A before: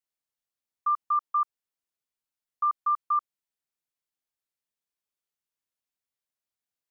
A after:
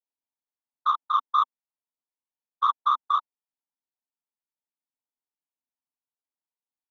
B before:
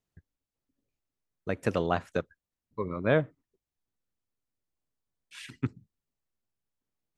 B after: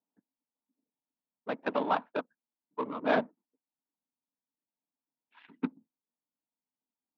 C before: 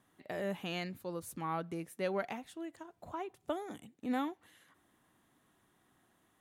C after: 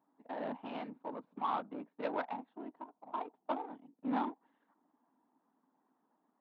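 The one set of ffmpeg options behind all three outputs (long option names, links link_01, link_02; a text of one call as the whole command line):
ffmpeg -i in.wav -af "afftfilt=real='hypot(re,im)*cos(2*PI*random(0))':imag='hypot(re,im)*sin(2*PI*random(1))':win_size=512:overlap=0.75,adynamicsmooth=sensitivity=7.5:basefreq=760,highpass=frequency=250:width=0.5412,highpass=frequency=250:width=1.3066,equalizer=frequency=260:width_type=q:width=4:gain=5,equalizer=frequency=370:width_type=q:width=4:gain=-10,equalizer=frequency=530:width_type=q:width=4:gain=-5,equalizer=frequency=920:width_type=q:width=4:gain=9,equalizer=frequency=1900:width_type=q:width=4:gain=-3,equalizer=frequency=3700:width_type=q:width=4:gain=4,lowpass=frequency=3900:width=0.5412,lowpass=frequency=3900:width=1.3066,volume=7dB" out.wav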